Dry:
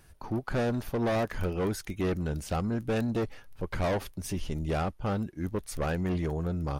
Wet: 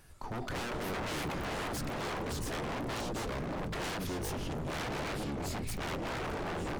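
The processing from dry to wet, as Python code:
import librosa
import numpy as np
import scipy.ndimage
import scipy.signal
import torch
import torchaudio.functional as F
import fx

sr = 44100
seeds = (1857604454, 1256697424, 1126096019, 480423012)

y = fx.hum_notches(x, sr, base_hz=50, count=9)
y = fx.echo_pitch(y, sr, ms=110, semitones=-4, count=3, db_per_echo=-3.0)
y = 10.0 ** (-31.5 / 20.0) * (np.abs((y / 10.0 ** (-31.5 / 20.0) + 3.0) % 4.0 - 2.0) - 1.0)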